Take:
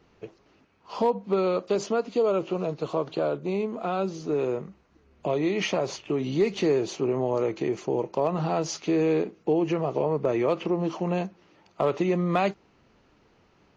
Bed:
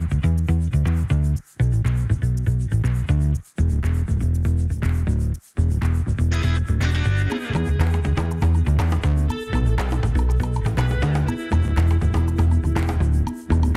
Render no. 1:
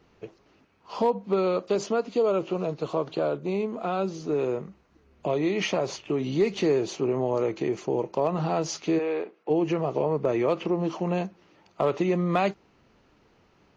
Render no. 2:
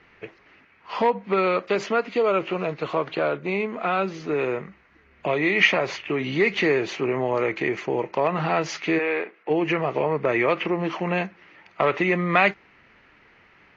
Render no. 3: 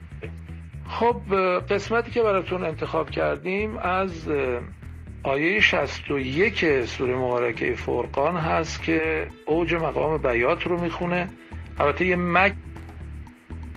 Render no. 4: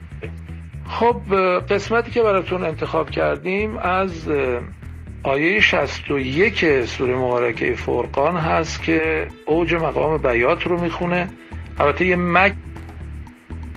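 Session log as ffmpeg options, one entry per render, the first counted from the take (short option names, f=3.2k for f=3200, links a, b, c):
-filter_complex "[0:a]asplit=3[a][b][c];[a]afade=t=out:st=8.98:d=0.02[d];[b]highpass=500,lowpass=3k,afade=t=in:st=8.98:d=0.02,afade=t=out:st=9.49:d=0.02[e];[c]afade=t=in:st=9.49:d=0.02[f];[d][e][f]amix=inputs=3:normalize=0"
-af "lowpass=f=2k:t=q:w=3,crystalizer=i=7.5:c=0"
-filter_complex "[1:a]volume=-18.5dB[a];[0:a][a]amix=inputs=2:normalize=0"
-af "volume=4.5dB,alimiter=limit=-1dB:level=0:latency=1"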